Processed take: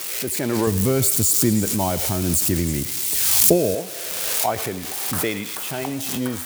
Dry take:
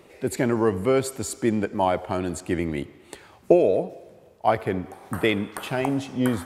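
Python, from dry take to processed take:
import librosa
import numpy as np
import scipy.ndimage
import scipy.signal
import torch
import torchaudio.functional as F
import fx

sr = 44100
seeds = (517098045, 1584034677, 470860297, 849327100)

y = x + 0.5 * 10.0 ** (-18.5 / 20.0) * np.diff(np.sign(x), prepend=np.sign(x[:1]))
y = fx.bass_treble(y, sr, bass_db=13, treble_db=8, at=(0.67, 3.75))
y = fx.echo_stepped(y, sr, ms=107, hz=2600.0, octaves=0.7, feedback_pct=70, wet_db=-6)
y = fx.pre_swell(y, sr, db_per_s=24.0)
y = F.gain(torch.from_numpy(y), -3.5).numpy()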